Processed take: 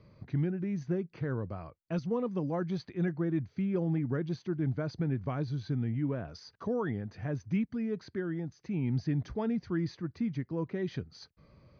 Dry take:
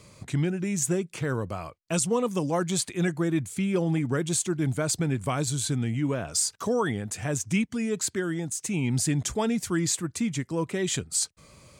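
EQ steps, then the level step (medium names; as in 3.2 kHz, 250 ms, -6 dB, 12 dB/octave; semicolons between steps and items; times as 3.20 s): rippled Chebyshev low-pass 6.3 kHz, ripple 9 dB; distance through air 370 m; peaking EQ 1.8 kHz -12 dB 2.4 oct; +5.5 dB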